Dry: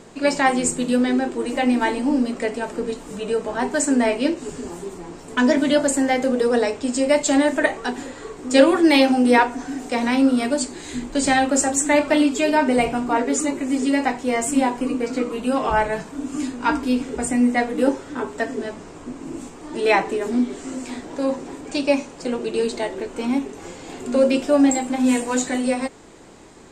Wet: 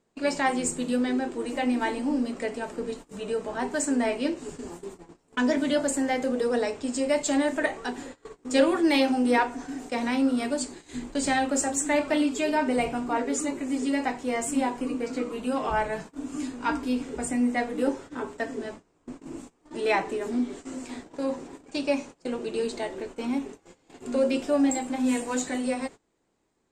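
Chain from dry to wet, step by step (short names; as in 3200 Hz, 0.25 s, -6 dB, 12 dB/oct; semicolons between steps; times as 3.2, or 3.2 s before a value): gate -33 dBFS, range -22 dB; in parallel at -9 dB: soft clip -14 dBFS, distortion -13 dB; on the sum: gain -9 dB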